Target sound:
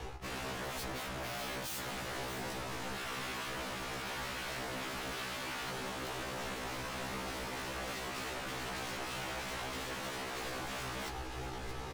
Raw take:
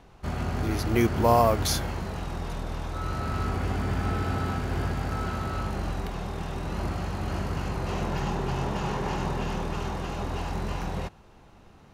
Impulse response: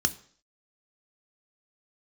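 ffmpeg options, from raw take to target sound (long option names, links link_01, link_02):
-filter_complex "[0:a]acrossover=split=120|1900[link_01][link_02][link_03];[link_01]asoftclip=type=tanh:threshold=-33dB[link_04];[link_04][link_02][link_03]amix=inputs=3:normalize=0,acontrast=85,aecho=1:1:2.4:0.99,areverse,acompressor=threshold=-33dB:ratio=6,areverse,aeval=exprs='0.0112*(abs(mod(val(0)/0.0112+3,4)-2)-1)':channel_layout=same,aecho=1:1:629:0.266,aeval=exprs='0.015*(cos(1*acos(clip(val(0)/0.015,-1,1)))-cos(1*PI/2))+0.00188*(cos(7*acos(clip(val(0)/0.015,-1,1)))-cos(7*PI/2))':channel_layout=same,afftfilt=real='re*1.73*eq(mod(b,3),0)':imag='im*1.73*eq(mod(b,3),0)':win_size=2048:overlap=0.75,volume=5dB"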